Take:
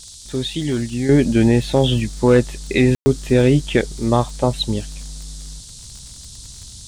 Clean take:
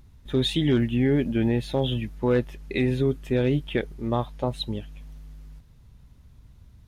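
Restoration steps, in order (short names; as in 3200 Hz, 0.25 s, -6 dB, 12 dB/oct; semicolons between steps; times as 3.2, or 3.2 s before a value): de-click; room tone fill 2.95–3.06; noise print and reduce 13 dB; gain correction -9 dB, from 1.09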